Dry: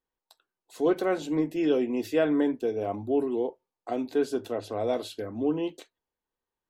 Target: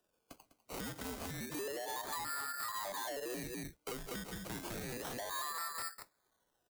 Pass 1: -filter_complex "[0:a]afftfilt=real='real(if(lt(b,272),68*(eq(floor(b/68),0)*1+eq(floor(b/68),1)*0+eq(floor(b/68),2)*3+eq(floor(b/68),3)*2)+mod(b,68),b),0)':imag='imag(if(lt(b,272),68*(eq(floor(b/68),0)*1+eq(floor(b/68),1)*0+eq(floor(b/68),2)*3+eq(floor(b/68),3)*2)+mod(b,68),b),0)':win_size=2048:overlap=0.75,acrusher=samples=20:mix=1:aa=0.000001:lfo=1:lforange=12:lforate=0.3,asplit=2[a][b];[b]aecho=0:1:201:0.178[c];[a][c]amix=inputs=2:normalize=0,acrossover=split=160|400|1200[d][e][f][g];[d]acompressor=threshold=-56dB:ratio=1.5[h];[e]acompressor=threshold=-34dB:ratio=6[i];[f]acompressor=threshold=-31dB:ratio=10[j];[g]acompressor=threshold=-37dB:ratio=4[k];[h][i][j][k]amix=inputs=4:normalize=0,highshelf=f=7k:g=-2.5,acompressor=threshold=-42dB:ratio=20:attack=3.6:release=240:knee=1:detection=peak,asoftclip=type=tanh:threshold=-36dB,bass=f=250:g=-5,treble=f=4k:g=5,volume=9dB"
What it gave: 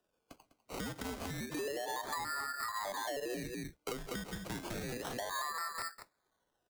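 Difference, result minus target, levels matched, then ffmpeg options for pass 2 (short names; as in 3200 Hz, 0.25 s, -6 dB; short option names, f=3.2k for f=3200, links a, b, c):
soft clip: distortion -13 dB; 8000 Hz band -2.5 dB
-filter_complex "[0:a]afftfilt=real='real(if(lt(b,272),68*(eq(floor(b/68),0)*1+eq(floor(b/68),1)*0+eq(floor(b/68),2)*3+eq(floor(b/68),3)*2)+mod(b,68),b),0)':imag='imag(if(lt(b,272),68*(eq(floor(b/68),0)*1+eq(floor(b/68),1)*0+eq(floor(b/68),2)*3+eq(floor(b/68),3)*2)+mod(b,68),b),0)':win_size=2048:overlap=0.75,acrusher=samples=20:mix=1:aa=0.000001:lfo=1:lforange=12:lforate=0.3,asplit=2[a][b];[b]aecho=0:1:201:0.178[c];[a][c]amix=inputs=2:normalize=0,acrossover=split=160|400|1200[d][e][f][g];[d]acompressor=threshold=-56dB:ratio=1.5[h];[e]acompressor=threshold=-34dB:ratio=6[i];[f]acompressor=threshold=-31dB:ratio=10[j];[g]acompressor=threshold=-37dB:ratio=4[k];[h][i][j][k]amix=inputs=4:normalize=0,highshelf=f=7k:g=6,acompressor=threshold=-42dB:ratio=20:attack=3.6:release=240:knee=1:detection=peak,asoftclip=type=tanh:threshold=-45dB,bass=f=250:g=-5,treble=f=4k:g=5,volume=9dB"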